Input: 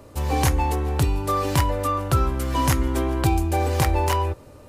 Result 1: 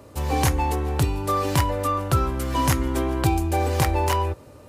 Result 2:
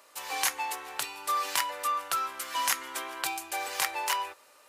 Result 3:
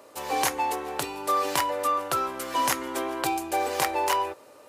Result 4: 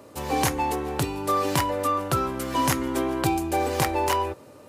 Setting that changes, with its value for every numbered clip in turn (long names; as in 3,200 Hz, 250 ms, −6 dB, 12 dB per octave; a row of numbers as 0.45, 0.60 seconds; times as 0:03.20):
high-pass filter, corner frequency: 58, 1,300, 480, 170 Hertz